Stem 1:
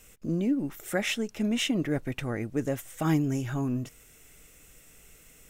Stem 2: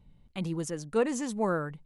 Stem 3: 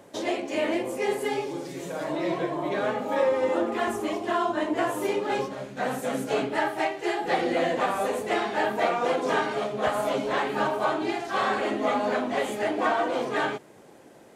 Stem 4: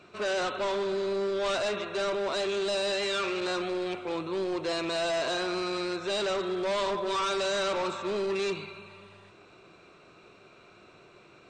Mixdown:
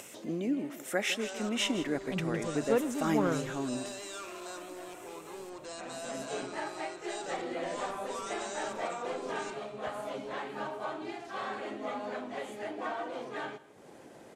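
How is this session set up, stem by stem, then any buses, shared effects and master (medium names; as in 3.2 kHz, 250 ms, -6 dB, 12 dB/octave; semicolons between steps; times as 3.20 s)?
-1.5 dB, 0.00 s, no send, echo send -13.5 dB, high-pass 280 Hz 12 dB/octave
-1.5 dB, 1.75 s, no send, no echo send, local Wiener filter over 25 samples
-12.0 dB, 0.00 s, no send, echo send -21 dB, auto duck -13 dB, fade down 0.25 s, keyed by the first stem
-8.5 dB, 1.00 s, no send, no echo send, graphic EQ 125/250/500/2000/4000/8000 Hz -9/-10/-4/-6/-8/+11 dB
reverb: none
echo: delay 161 ms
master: low-pass 12 kHz 12 dB/octave; upward compressor, threshold -40 dBFS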